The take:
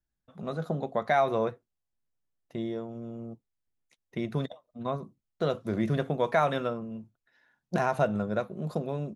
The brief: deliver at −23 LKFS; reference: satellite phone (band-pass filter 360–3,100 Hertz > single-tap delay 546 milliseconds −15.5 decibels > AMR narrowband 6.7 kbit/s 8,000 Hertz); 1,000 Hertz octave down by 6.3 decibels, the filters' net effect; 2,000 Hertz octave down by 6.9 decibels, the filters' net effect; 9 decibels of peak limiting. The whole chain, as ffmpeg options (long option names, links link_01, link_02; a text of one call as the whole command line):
ffmpeg -i in.wav -af "equalizer=frequency=1000:width_type=o:gain=-8.5,equalizer=frequency=2000:width_type=o:gain=-5,alimiter=level_in=0.5dB:limit=-24dB:level=0:latency=1,volume=-0.5dB,highpass=360,lowpass=3100,aecho=1:1:546:0.168,volume=18dB" -ar 8000 -c:a libopencore_amrnb -b:a 6700 out.amr